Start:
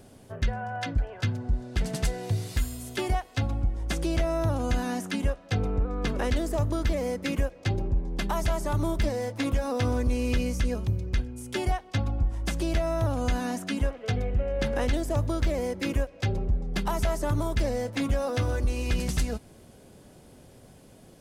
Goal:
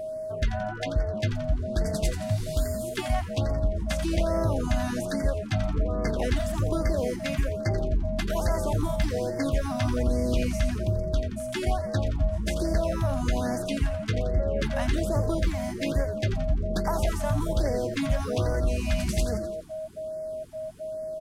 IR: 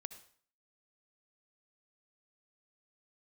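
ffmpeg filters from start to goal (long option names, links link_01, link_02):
-filter_complex "[0:a]asplit=2[link_01][link_02];[link_02]asplit=6[link_03][link_04][link_05][link_06][link_07][link_08];[link_03]adelay=86,afreqshift=-130,volume=-9dB[link_09];[link_04]adelay=172,afreqshift=-260,volume=-14.4dB[link_10];[link_05]adelay=258,afreqshift=-390,volume=-19.7dB[link_11];[link_06]adelay=344,afreqshift=-520,volume=-25.1dB[link_12];[link_07]adelay=430,afreqshift=-650,volume=-30.4dB[link_13];[link_08]adelay=516,afreqshift=-780,volume=-35.8dB[link_14];[link_09][link_10][link_11][link_12][link_13][link_14]amix=inputs=6:normalize=0[link_15];[link_01][link_15]amix=inputs=2:normalize=0,aeval=exprs='val(0)+0.0282*sin(2*PI*630*n/s)':channel_layout=same,afftfilt=real='re*(1-between(b*sr/1024,370*pow(3200/370,0.5+0.5*sin(2*PI*1.2*pts/sr))/1.41,370*pow(3200/370,0.5+0.5*sin(2*PI*1.2*pts/sr))*1.41))':imag='im*(1-between(b*sr/1024,370*pow(3200/370,0.5+0.5*sin(2*PI*1.2*pts/sr))/1.41,370*pow(3200/370,0.5+0.5*sin(2*PI*1.2*pts/sr))*1.41))':win_size=1024:overlap=0.75"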